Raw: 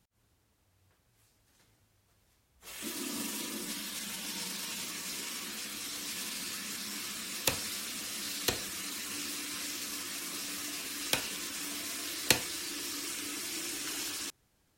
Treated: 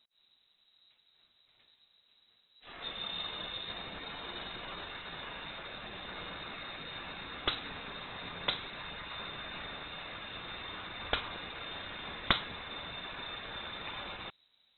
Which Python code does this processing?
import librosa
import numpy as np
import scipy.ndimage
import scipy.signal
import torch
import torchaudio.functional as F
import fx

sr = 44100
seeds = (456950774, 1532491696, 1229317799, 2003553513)

y = fx.low_shelf(x, sr, hz=150.0, db=3.5)
y = fx.freq_invert(y, sr, carrier_hz=3900)